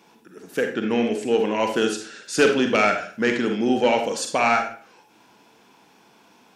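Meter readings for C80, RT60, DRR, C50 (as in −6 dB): 11.0 dB, 0.45 s, 4.0 dB, 6.0 dB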